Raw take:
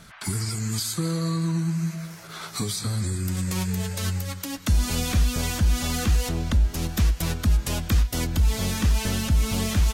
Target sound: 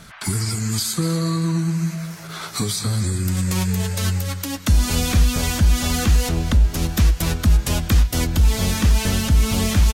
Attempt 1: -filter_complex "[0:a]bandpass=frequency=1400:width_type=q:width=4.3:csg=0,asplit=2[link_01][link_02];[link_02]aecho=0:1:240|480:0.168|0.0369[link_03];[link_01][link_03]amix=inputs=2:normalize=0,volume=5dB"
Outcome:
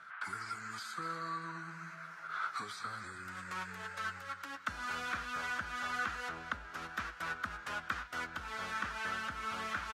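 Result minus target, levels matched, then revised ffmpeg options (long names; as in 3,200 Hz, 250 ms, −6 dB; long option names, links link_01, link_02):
1,000 Hz band +13.5 dB
-filter_complex "[0:a]asplit=2[link_01][link_02];[link_02]aecho=0:1:240|480:0.168|0.0369[link_03];[link_01][link_03]amix=inputs=2:normalize=0,volume=5dB"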